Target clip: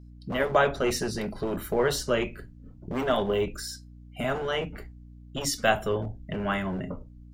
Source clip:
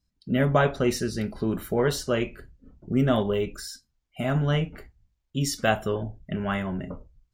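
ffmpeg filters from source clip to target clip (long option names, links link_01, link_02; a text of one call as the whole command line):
ffmpeg -i in.wav -filter_complex "[0:a]acrossover=split=320[link_01][link_02];[link_01]aeval=exprs='0.0335*(abs(mod(val(0)/0.0335+3,4)-2)-1)':channel_layout=same[link_03];[link_03][link_02]amix=inputs=2:normalize=0,aeval=exprs='val(0)+0.00447*(sin(2*PI*60*n/s)+sin(2*PI*2*60*n/s)/2+sin(2*PI*3*60*n/s)/3+sin(2*PI*4*60*n/s)/4+sin(2*PI*5*60*n/s)/5)':channel_layout=same,volume=1dB" out.wav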